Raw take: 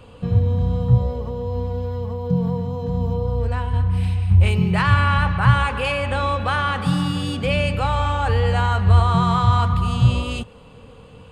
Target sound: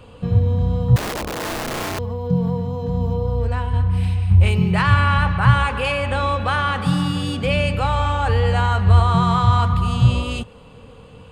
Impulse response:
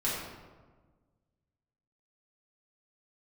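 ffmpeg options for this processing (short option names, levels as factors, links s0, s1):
-filter_complex "[0:a]asettb=1/sr,asplit=3[s0][s1][s2];[s0]atrim=end=0.964[s3];[s1]atrim=start=0.96:end=1.99,asetpts=PTS-STARTPTS,afade=t=in:d=0.004:c=qsin,afade=t=out:st=1.026:d=0.004:c=qsin,aeval=exprs='(mod(12.6*val(0)+1,2)-1)/12.6':c=same[s4];[s2]atrim=start=1.986[s5];[s3][s4]acrossfade=d=0.004:c1=hsin:c2=qsin[s6];[s6][s5]acrossfade=d=0.004:c1=qsin:c2=hsin,volume=1.12"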